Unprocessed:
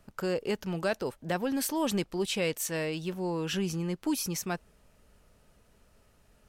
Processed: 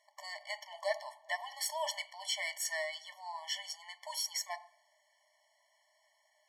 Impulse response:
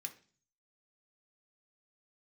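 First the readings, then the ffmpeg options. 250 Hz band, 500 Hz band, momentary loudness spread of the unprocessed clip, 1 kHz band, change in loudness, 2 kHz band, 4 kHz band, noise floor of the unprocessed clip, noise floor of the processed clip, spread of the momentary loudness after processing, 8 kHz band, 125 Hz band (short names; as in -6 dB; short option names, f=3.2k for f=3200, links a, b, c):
under -40 dB, -10.5 dB, 4 LU, -3.5 dB, -6.5 dB, -2.0 dB, -0.5 dB, -65 dBFS, -74 dBFS, 10 LU, -3.0 dB, under -40 dB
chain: -filter_complex "[0:a]adynamicsmooth=sensitivity=4:basefreq=7.8k,asplit=2[a][b];[1:a]atrim=start_sample=2205,asetrate=31311,aresample=44100,lowshelf=f=450:g=-11[c];[b][c]afir=irnorm=-1:irlink=0,volume=2.5dB[d];[a][d]amix=inputs=2:normalize=0,afftfilt=real='re*eq(mod(floor(b*sr/1024/580),2),1)':imag='im*eq(mod(floor(b*sr/1024/580),2),1)':win_size=1024:overlap=0.75,volume=-3dB"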